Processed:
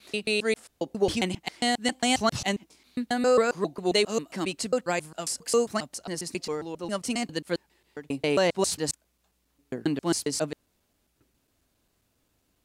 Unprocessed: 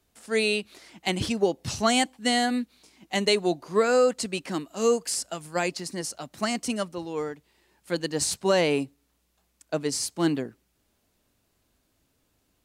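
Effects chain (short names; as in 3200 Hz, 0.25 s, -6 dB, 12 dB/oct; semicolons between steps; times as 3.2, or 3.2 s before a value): slices in reverse order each 0.135 s, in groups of 6; gain -1 dB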